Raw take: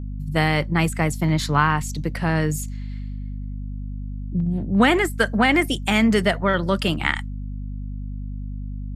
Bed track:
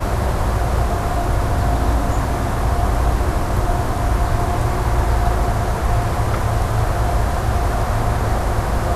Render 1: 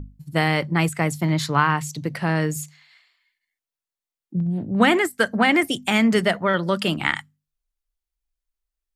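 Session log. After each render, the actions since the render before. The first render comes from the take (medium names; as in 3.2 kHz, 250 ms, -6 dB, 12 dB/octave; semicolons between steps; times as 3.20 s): hum notches 50/100/150/200/250 Hz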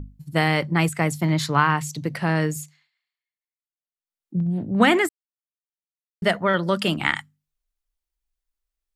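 2.46–4.36 s: dip -23.5 dB, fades 0.45 s; 5.09–6.22 s: mute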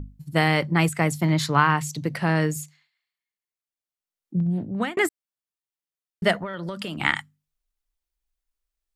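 4.54–4.97 s: fade out; 6.35–7.00 s: compression 12:1, threshold -27 dBFS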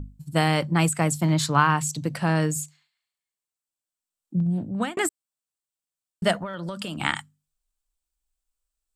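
graphic EQ with 31 bands 400 Hz -5 dB, 2 kHz -7 dB, 8 kHz +9 dB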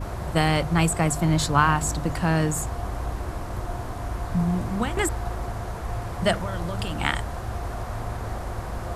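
add bed track -12.5 dB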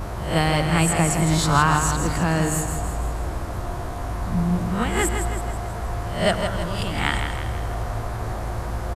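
reverse spectral sustain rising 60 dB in 0.45 s; on a send: feedback delay 162 ms, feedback 51%, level -7 dB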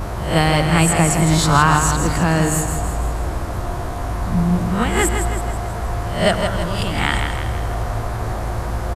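trim +4.5 dB; peak limiter -1 dBFS, peak gain reduction 2.5 dB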